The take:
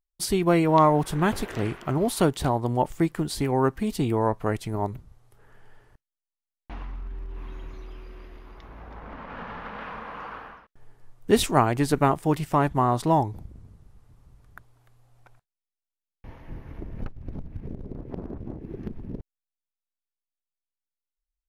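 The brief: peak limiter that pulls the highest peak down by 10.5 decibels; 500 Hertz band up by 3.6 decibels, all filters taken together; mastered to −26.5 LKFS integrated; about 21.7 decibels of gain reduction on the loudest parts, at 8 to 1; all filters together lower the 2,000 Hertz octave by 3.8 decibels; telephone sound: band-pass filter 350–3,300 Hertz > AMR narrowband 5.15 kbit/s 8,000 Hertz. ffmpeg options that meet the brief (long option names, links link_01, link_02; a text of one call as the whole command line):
ffmpeg -i in.wav -af "equalizer=frequency=500:width_type=o:gain=6.5,equalizer=frequency=2000:width_type=o:gain=-5,acompressor=threshold=-32dB:ratio=8,alimiter=level_in=7dB:limit=-24dB:level=0:latency=1,volume=-7dB,highpass=350,lowpass=3300,volume=20.5dB" -ar 8000 -c:a libopencore_amrnb -b:a 5150 out.amr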